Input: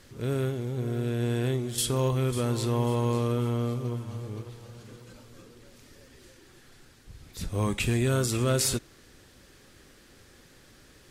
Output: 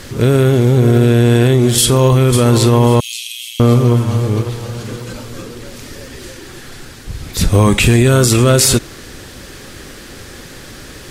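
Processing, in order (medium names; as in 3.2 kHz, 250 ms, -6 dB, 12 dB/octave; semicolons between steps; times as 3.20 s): 3.00–3.60 s: steep high-pass 2.6 kHz 48 dB/octave; loudness maximiser +22.5 dB; trim -1 dB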